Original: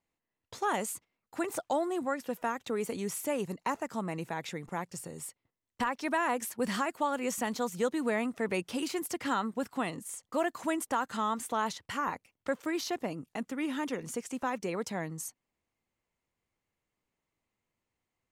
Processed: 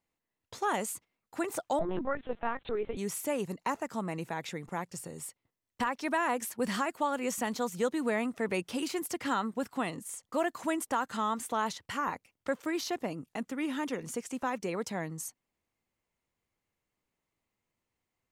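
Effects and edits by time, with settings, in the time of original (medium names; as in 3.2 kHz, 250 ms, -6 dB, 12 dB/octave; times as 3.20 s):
1.79–2.97 s: LPC vocoder at 8 kHz pitch kept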